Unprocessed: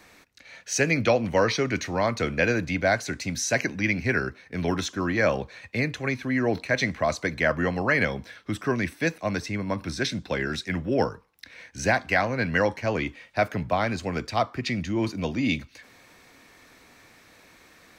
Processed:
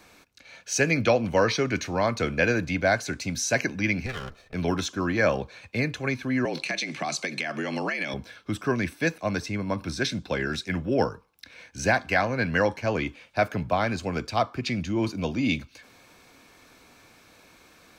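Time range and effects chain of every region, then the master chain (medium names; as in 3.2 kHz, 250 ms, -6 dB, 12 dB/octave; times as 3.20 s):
4.06–4.54 s: comb filter that takes the minimum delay 1.6 ms + compression 2:1, threshold -34 dBFS + tape noise reduction on one side only decoder only
6.45–8.14 s: high-order bell 4.4 kHz +9 dB 2.7 oct + compression 12:1, threshold -24 dBFS + frequency shift +68 Hz
whole clip: band-stop 1.9 kHz, Q 5.9; dynamic bell 1.8 kHz, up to +5 dB, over -44 dBFS, Q 5.5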